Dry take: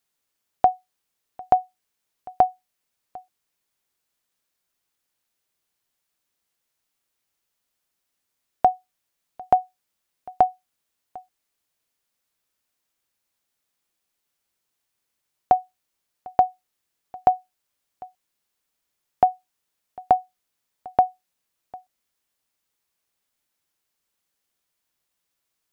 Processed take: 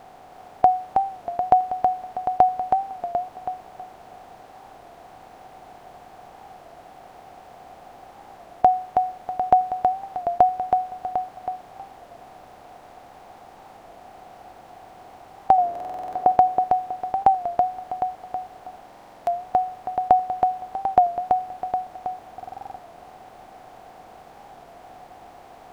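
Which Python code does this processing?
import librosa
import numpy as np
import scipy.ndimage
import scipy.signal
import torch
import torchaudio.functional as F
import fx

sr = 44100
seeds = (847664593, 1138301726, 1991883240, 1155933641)

p1 = fx.bin_compress(x, sr, power=0.4)
p2 = fx.peak_eq(p1, sr, hz=390.0, db=10.0, octaves=2.9, at=(15.59, 16.32))
p3 = p2 + fx.echo_feedback(p2, sr, ms=322, feedback_pct=31, wet_db=-4.5, dry=0)
p4 = fx.buffer_glitch(p3, sr, at_s=(15.71, 18.86, 22.35), block=2048, repeats=8)
y = fx.record_warp(p4, sr, rpm=33.33, depth_cents=100.0)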